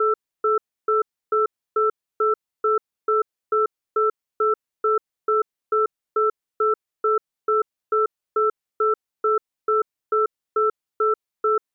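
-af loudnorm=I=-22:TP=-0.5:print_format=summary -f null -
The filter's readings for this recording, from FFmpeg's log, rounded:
Input Integrated:    -24.0 LUFS
Input True Peak:     -12.9 dBTP
Input LRA:             0.4 LU
Input Threshold:     -34.0 LUFS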